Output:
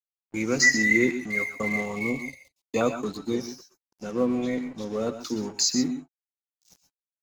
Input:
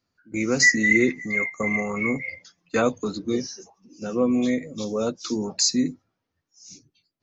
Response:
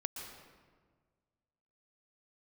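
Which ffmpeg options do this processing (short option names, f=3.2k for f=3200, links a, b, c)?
-filter_complex "[0:a]asettb=1/sr,asplit=3[a][b][c];[a]atrim=end=4.114[d];[b]atrim=start=4.11:end=5.13,asetpts=PTS-STARTPTS,afade=t=in:d=0.004:c=qsin,afade=t=out:st=1.016:d=0.004:c=qsin,highshelf=f=4.3k:g=-10.5[e];[c]atrim=start=5.126[f];[d][e]acrossfade=d=0.004:c1=hsin:c2=qsin[g];[g][f]acrossfade=d=0.004:c1=qsin:c2=hsin,aeval=exprs='sgn(val(0))*max(abs(val(0))-0.00841,0)':c=same,asettb=1/sr,asplit=3[h][i][j];[h]atrim=end=1.864[k];[i]atrim=start=1.86:end=2.81,asetpts=PTS-STARTPTS,afade=t=in:d=0.004:c=qsin,afade=t=out:st=0.946:d=0.004:c=qsin,asuperstop=centerf=1500:order=4:qfactor=1.6[l];[j]atrim=start=2.806[m];[k][l]acrossfade=d=0.004:c1=hsin:c2=qsin[n];[n][m]acrossfade=d=0.004:c1=qsin:c2=hsin[o];[1:a]atrim=start_sample=2205,atrim=end_sample=6174[p];[o][p]afir=irnorm=-1:irlink=0"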